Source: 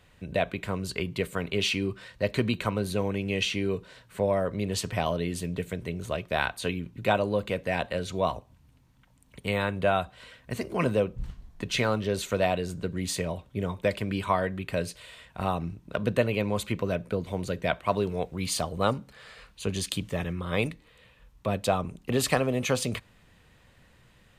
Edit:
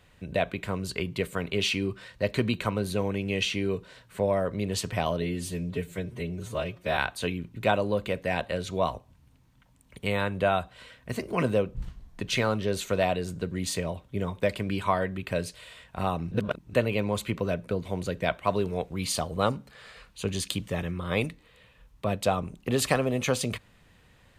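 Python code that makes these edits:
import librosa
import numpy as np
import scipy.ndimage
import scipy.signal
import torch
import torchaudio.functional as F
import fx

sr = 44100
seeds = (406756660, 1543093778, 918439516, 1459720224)

y = fx.edit(x, sr, fx.stretch_span(start_s=5.22, length_s=1.17, factor=1.5),
    fx.reverse_span(start_s=15.73, length_s=0.42), tone=tone)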